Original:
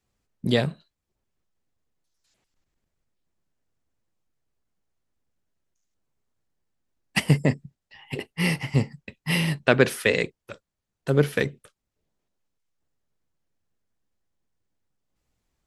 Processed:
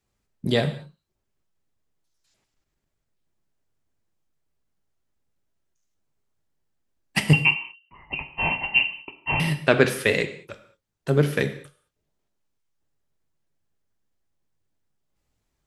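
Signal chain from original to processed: 7.33–9.40 s: frequency inversion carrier 2.9 kHz; gated-style reverb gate 240 ms falling, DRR 7.5 dB

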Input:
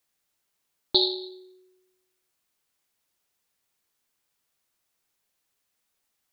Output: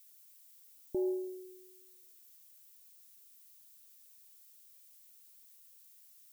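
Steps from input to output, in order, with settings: steep low-pass 700 Hz 48 dB/octave; peak limiter -27 dBFS, peak gain reduction 7.5 dB; added noise violet -60 dBFS

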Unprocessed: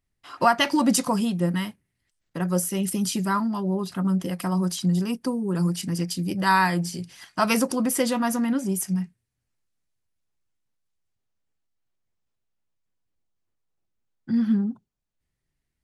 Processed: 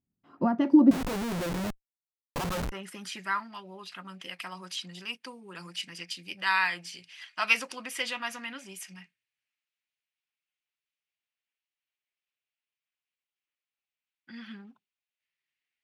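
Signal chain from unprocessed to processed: band-pass sweep 210 Hz -> 2.6 kHz, 0.28–3.59 s; 0.91–2.72 s: Schmitt trigger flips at -46 dBFS; trim +5.5 dB

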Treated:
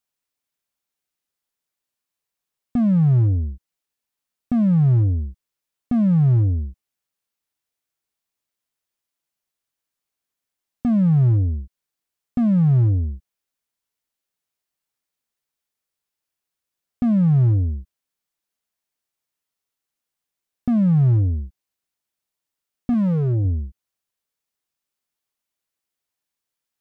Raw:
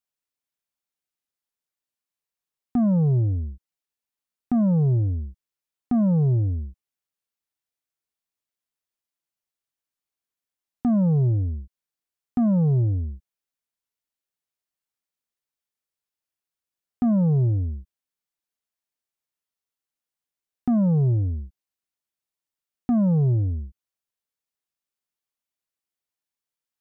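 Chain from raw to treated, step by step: 22.93–23.45 s: dynamic bell 140 Hz, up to -6 dB, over -32 dBFS, Q 1.6; slew-rate limiter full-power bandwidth 20 Hz; trim +5 dB

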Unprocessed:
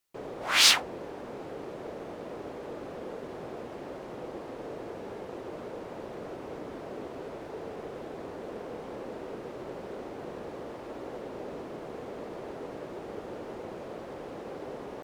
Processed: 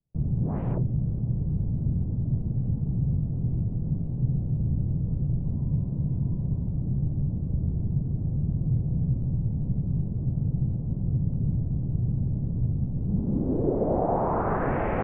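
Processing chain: peaking EQ 1.1 kHz +14 dB 1.7 oct; mistuned SSB -370 Hz 190–3200 Hz; 5.45–6.68 s: small resonant body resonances 1/1.9 kHz, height 10 dB; low-pass sweep 140 Hz -> 2.2 kHz, 12.97–14.82 s; trim +7.5 dB

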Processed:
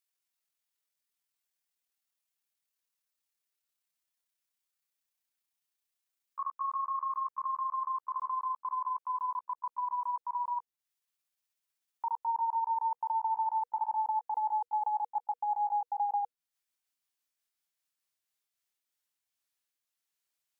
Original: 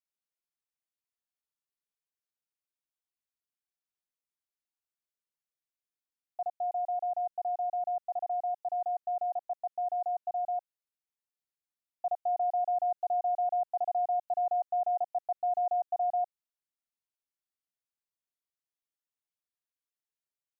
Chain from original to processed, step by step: pitch bend over the whole clip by +11 st ending unshifted; band-stop 480 Hz, Q 15; tape noise reduction on one side only encoder only

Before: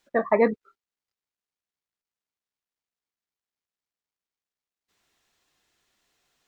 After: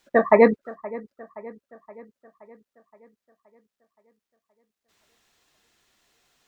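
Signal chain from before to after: feedback echo behind a low-pass 522 ms, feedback 55%, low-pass 2.1 kHz, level -19 dB; trim +5.5 dB

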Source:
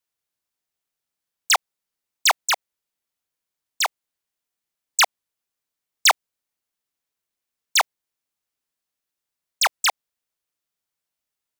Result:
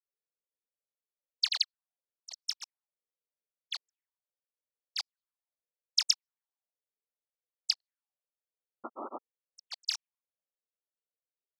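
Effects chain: auto-wah 500–4700 Hz, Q 7.2, up, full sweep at -19.5 dBFS; painted sound noise, 8.92–9.14 s, 230–1400 Hz -38 dBFS; granulator 100 ms, grains 20 per s, spray 100 ms, pitch spread up and down by 3 st

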